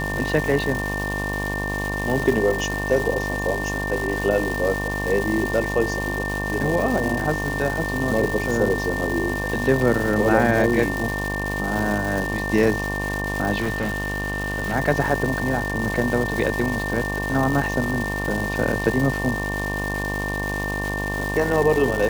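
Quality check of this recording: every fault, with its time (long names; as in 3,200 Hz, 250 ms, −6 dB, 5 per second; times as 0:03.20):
mains buzz 50 Hz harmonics 23 −28 dBFS
surface crackle 580 per second −25 dBFS
whistle 1,800 Hz −27 dBFS
0:13.60–0:14.75: clipping −20 dBFS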